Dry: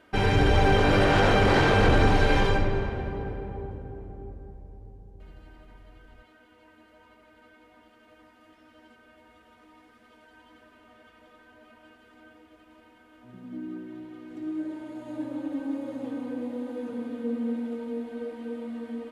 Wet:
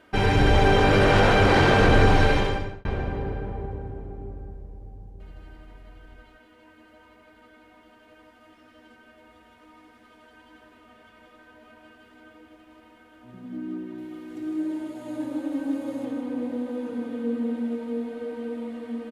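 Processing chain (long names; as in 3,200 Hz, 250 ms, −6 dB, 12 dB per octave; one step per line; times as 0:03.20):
0:13.98–0:16.05: high-shelf EQ 5,700 Hz +9 dB
single-tap delay 157 ms −7.5 dB
0:02.24–0:02.85: fade out
level +2 dB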